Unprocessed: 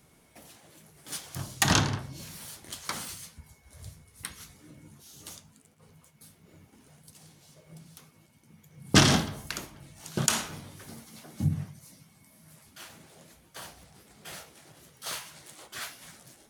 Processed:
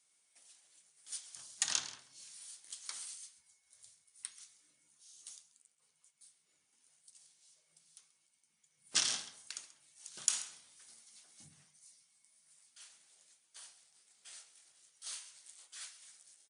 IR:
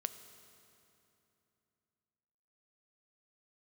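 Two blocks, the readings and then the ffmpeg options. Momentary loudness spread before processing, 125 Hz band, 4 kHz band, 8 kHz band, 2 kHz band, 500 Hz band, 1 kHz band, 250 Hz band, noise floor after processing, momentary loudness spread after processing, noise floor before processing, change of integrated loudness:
25 LU, −38.5 dB, −9.5 dB, −5.0 dB, −15.5 dB, −27.0 dB, −21.0 dB, −34.0 dB, −77 dBFS, 23 LU, −62 dBFS, −10.0 dB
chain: -af "aderivative,aecho=1:1:134:0.141,volume=-4.5dB" -ar 22050 -c:a wmav2 -b:a 128k

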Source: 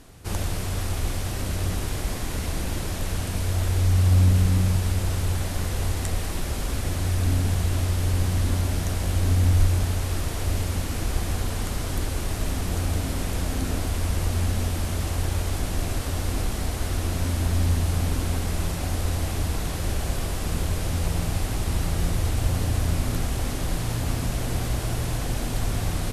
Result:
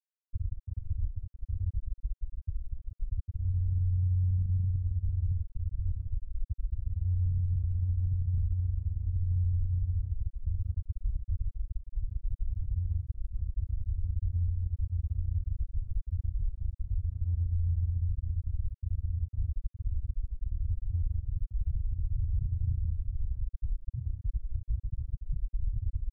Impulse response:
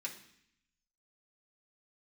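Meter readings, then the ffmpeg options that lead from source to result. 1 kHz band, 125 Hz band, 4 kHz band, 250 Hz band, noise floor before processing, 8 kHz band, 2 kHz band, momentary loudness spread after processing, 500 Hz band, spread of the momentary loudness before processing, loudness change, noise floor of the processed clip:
below −40 dB, −7.0 dB, below −40 dB, below −20 dB, −29 dBFS, below −40 dB, below −40 dB, 9 LU, below −35 dB, 7 LU, −8.0 dB, below −85 dBFS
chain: -af "highshelf=frequency=6400:gain=6.5,acrusher=bits=8:dc=4:mix=0:aa=0.000001,afftfilt=real='re*gte(hypot(re,im),0.562)':imag='im*gte(hypot(re,im),0.562)':win_size=1024:overlap=0.75,acompressor=threshold=-23dB:ratio=6,alimiter=limit=-22.5dB:level=0:latency=1:release=75"

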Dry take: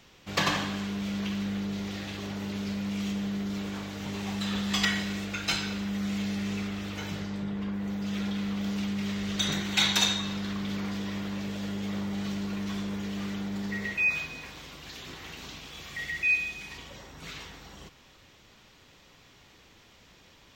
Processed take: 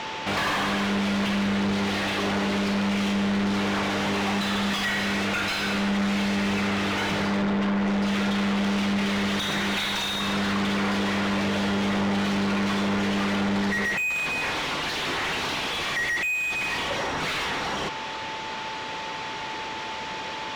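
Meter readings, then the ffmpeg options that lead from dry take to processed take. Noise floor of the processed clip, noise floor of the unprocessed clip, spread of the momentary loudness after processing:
−33 dBFS, −57 dBFS, 8 LU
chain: -filter_complex "[0:a]lowpass=7900,acompressor=threshold=-37dB:ratio=2,aeval=exprs='val(0)+0.000891*sin(2*PI*880*n/s)':channel_layout=same,asplit=2[link_01][link_02];[link_02]highpass=frequency=720:poles=1,volume=32dB,asoftclip=type=tanh:threshold=-20.5dB[link_03];[link_01][link_03]amix=inputs=2:normalize=0,lowpass=frequency=1700:poles=1,volume=-6dB,volume=4.5dB"

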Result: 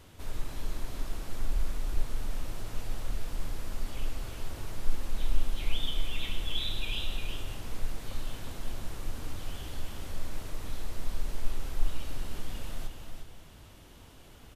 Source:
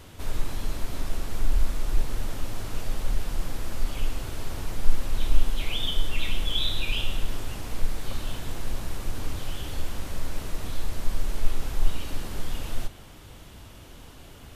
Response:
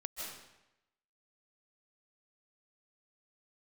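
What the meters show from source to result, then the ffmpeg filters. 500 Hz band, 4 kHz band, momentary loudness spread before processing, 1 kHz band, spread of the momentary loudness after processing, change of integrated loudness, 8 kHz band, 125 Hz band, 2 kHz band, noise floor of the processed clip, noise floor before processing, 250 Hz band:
−6.0 dB, −6.0 dB, 10 LU, −6.0 dB, 10 LU, −6.0 dB, −6.0 dB, −6.0 dB, −6.0 dB, −52 dBFS, −46 dBFS, −6.0 dB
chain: -filter_complex "[0:a]aecho=1:1:359:0.473,asplit=2[link_01][link_02];[1:a]atrim=start_sample=2205[link_03];[link_02][link_03]afir=irnorm=-1:irlink=0,volume=-11dB[link_04];[link_01][link_04]amix=inputs=2:normalize=0,volume=-8.5dB"

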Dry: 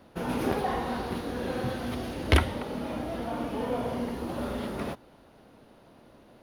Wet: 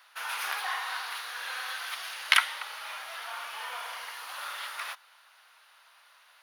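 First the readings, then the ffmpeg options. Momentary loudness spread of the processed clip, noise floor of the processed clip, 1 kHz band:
15 LU, −60 dBFS, −1.5 dB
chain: -af "highpass=frequency=1200:width=0.5412,highpass=frequency=1200:width=1.3066,volume=7dB"

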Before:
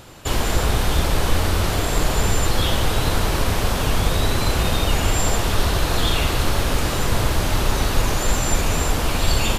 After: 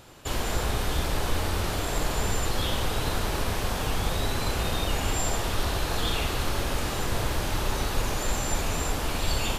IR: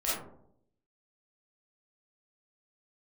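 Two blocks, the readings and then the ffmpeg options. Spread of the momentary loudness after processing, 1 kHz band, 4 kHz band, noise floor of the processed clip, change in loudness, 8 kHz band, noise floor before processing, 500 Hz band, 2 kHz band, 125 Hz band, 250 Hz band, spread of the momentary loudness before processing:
1 LU, −6.5 dB, −7.0 dB, −30 dBFS, −7.5 dB, −7.0 dB, −22 dBFS, −7.0 dB, −6.5 dB, −8.5 dB, −7.5 dB, 1 LU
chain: -filter_complex "[0:a]asplit=2[link_01][link_02];[link_02]highpass=200[link_03];[1:a]atrim=start_sample=2205,asetrate=57330,aresample=44100[link_04];[link_03][link_04]afir=irnorm=-1:irlink=0,volume=-12dB[link_05];[link_01][link_05]amix=inputs=2:normalize=0,volume=-8.5dB"

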